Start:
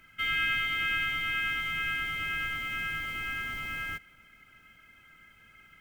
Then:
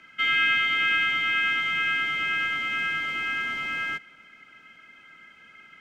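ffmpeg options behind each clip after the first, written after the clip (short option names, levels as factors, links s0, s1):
-filter_complex "[0:a]acrossover=split=170 7100:gain=0.1 1 0.0794[s0][s1][s2];[s0][s1][s2]amix=inputs=3:normalize=0,volume=2.11"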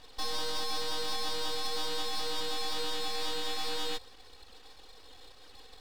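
-af "alimiter=limit=0.0708:level=0:latency=1:release=111,aeval=exprs='abs(val(0))':c=same"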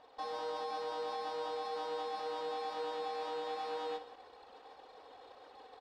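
-af "areverse,acompressor=mode=upward:threshold=0.0112:ratio=2.5,areverse,bandpass=f=700:t=q:w=1.5:csg=0,aecho=1:1:63|172:0.237|0.141,volume=1.41"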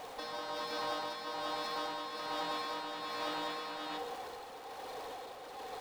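-af "aeval=exprs='val(0)+0.5*0.00224*sgn(val(0))':c=same,afftfilt=real='re*lt(hypot(re,im),0.0562)':imag='im*lt(hypot(re,im),0.0562)':win_size=1024:overlap=0.75,tremolo=f=1.2:d=0.43,volume=2.51"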